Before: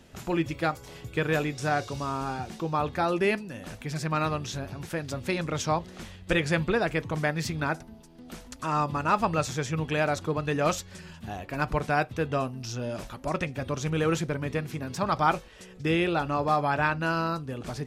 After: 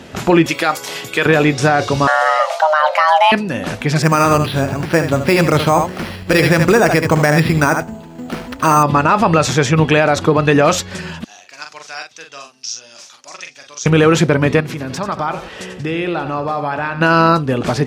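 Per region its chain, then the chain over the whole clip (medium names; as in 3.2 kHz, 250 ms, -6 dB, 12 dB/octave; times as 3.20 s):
0.46–1.26 s: high-pass 140 Hz + tilt EQ +3 dB/octave
2.07–3.32 s: band-stop 1.2 kHz, Q 18 + frequency shift +460 Hz
4.02–8.83 s: delay 74 ms -10 dB + careless resampling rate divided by 6×, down filtered, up hold
11.24–13.86 s: band-pass filter 6 kHz, Q 3 + doubling 43 ms -5.5 dB
14.60–17.01 s: compression 4:1, threshold -39 dBFS + feedback delay 90 ms, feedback 35%, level -11 dB
whole clip: high-pass 160 Hz 6 dB/octave; treble shelf 6.6 kHz -10.5 dB; loudness maximiser +21.5 dB; trim -1.5 dB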